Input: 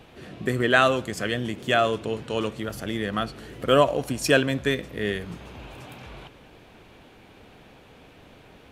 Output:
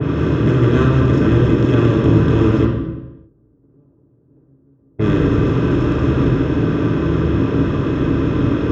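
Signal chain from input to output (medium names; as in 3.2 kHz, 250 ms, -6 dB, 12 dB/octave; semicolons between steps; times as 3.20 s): spectral levelling over time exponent 0.2; 2.65–4.99 s: gate -5 dBFS, range -40 dB; level-controlled noise filter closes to 590 Hz, open at -11.5 dBFS; tilt EQ -2 dB/octave; AM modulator 260 Hz, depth 50%; treble shelf 4.9 kHz -6 dB; reverberation RT60 1.0 s, pre-delay 3 ms, DRR -5 dB; trim -14.5 dB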